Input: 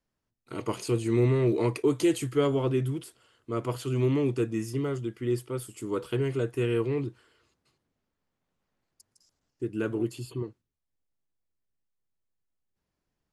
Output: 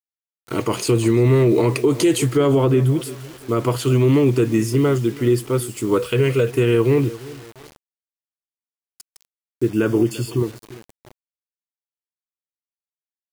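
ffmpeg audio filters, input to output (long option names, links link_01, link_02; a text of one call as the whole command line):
ffmpeg -i in.wav -filter_complex "[0:a]asettb=1/sr,asplit=3[link_01][link_02][link_03];[link_01]atrim=end=5.984[link_04];[link_02]atrim=start=5.98:end=6.49,asetpts=PTS-STARTPTS,afade=type=in:duration=0.004:curve=qsin,afade=type=out:start_time=0.506:duration=0.004:curve=qsin,equalizer=frequency=160:width_type=o:width=0.33:gain=-5,equalizer=frequency=315:width_type=o:width=0.33:gain=-12,equalizer=frequency=500:width_type=o:width=0.33:gain=6,equalizer=frequency=800:width_type=o:width=0.33:gain=-10,equalizer=frequency=2500:width_type=o:width=0.33:gain=7[link_05];[link_03]atrim=start=6.486[link_06];[link_04][link_05]acrossfade=duration=0.004:curve1=hsin:curve2=qsin[link_07];[link_07][link_06]acrossfade=duration=0.004:curve1=qsin:curve2=hsin,aecho=1:1:345|690|1035:0.1|0.032|0.0102,acrusher=bits=8:mix=0:aa=0.000001,asettb=1/sr,asplit=3[link_08][link_09][link_10];[link_08]atrim=end=9.694[link_11];[link_09]atrim=start=9.69:end=10.38,asetpts=PTS-STARTPTS,afade=type=in:duration=0.004:curve=qsin,afade=type=out:start_time=0.686:duration=0.004:curve=qsin,asuperstop=centerf=4000:order=8:qfactor=7.5[link_12];[link_10]atrim=start=10.376[link_13];[link_11][link_12]acrossfade=duration=0.004:curve1=hsin:curve2=qsin[link_14];[link_14][link_13]acrossfade=duration=0.004:curve1=qsin:curve2=hsin,alimiter=level_in=20dB:limit=-1dB:release=50:level=0:latency=1,asplit=3[link_15][link_16][link_17];[link_15]afade=type=out:start_time=2.35:duration=0.02[link_18];[link_16]adynamicequalizer=threshold=0.0447:dfrequency=2200:dqfactor=0.7:tfrequency=2200:tqfactor=0.7:attack=5:release=100:ratio=0.375:range=2.5:mode=cutabove:tftype=highshelf,afade=type=in:start_time=2.35:duration=0.02,afade=type=out:start_time=2.99:duration=0.02[link_19];[link_17]afade=type=in:start_time=2.99:duration=0.02[link_20];[link_18][link_19][link_20]amix=inputs=3:normalize=0,volume=-7dB" out.wav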